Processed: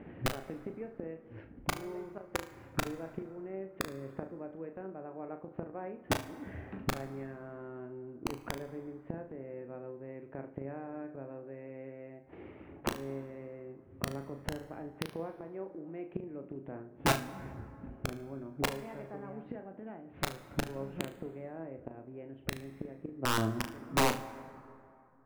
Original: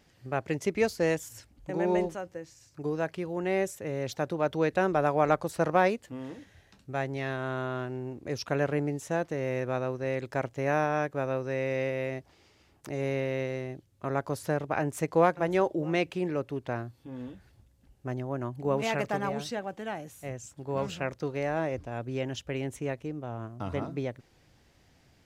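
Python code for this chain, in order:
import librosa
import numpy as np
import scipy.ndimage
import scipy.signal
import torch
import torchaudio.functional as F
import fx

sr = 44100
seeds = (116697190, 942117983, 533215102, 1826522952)

y = fx.fade_out_tail(x, sr, length_s=4.5)
y = scipy.signal.sosfilt(scipy.signal.butter(6, 2500.0, 'lowpass', fs=sr, output='sos'), y)
y = fx.peak_eq(y, sr, hz=290.0, db=13.0, octaves=2.4)
y = fx.rider(y, sr, range_db=4, speed_s=0.5)
y = fx.gate_flip(y, sr, shuts_db=-19.0, range_db=-27)
y = (np.mod(10.0 ** (23.5 / 20.0) * y + 1.0, 2.0) - 1.0) / 10.0 ** (23.5 / 20.0)
y = fx.room_flutter(y, sr, wall_m=6.3, rt60_s=0.28)
y = fx.rev_plate(y, sr, seeds[0], rt60_s=2.7, hf_ratio=0.4, predelay_ms=0, drr_db=13.5)
y = y * librosa.db_to_amplitude(3.0)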